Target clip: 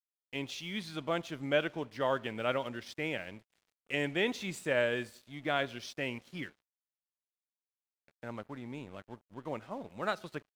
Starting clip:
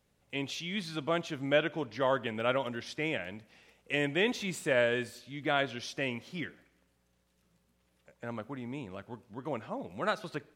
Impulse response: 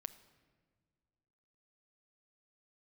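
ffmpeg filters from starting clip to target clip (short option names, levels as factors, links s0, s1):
-af "aeval=exprs='sgn(val(0))*max(abs(val(0))-0.00188,0)':c=same,volume=0.794"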